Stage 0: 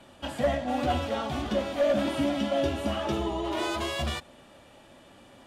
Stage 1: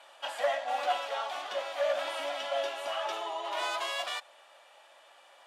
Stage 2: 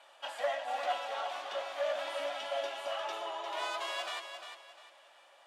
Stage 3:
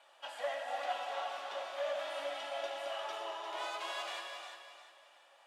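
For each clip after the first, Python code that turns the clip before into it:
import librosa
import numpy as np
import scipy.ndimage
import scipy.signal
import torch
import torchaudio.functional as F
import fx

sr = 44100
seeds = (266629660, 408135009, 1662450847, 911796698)

y1 = scipy.signal.sosfilt(scipy.signal.butter(4, 640.0, 'highpass', fs=sr, output='sos'), x)
y1 = fx.high_shelf(y1, sr, hz=7200.0, db=-5.0)
y1 = fx.rider(y1, sr, range_db=4, speed_s=2.0)
y2 = fx.high_shelf(y1, sr, hz=11000.0, db=-4.0)
y2 = fx.echo_feedback(y2, sr, ms=351, feedback_pct=32, wet_db=-8)
y2 = F.gain(torch.from_numpy(y2), -4.0).numpy()
y3 = fx.rev_gated(y2, sr, seeds[0], gate_ms=400, shape='flat', drr_db=3.0)
y3 = F.gain(torch.from_numpy(y3), -4.5).numpy()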